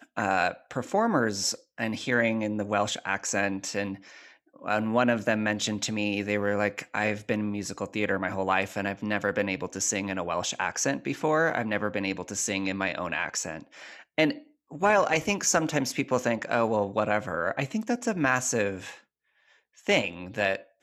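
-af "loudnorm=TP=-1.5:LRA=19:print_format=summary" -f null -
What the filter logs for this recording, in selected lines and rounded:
Input Integrated:    -27.6 LUFS
Input True Peak:      -7.7 dBTP
Input LRA:             2.2 LU
Input Threshold:     -38.1 LUFS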